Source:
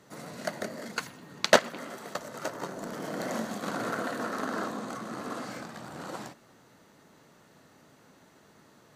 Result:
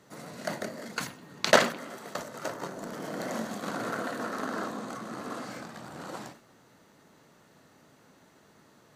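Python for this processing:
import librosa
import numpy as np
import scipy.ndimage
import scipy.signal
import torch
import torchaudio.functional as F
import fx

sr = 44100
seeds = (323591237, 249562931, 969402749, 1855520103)

y = fx.sustainer(x, sr, db_per_s=130.0)
y = y * 10.0 ** (-1.0 / 20.0)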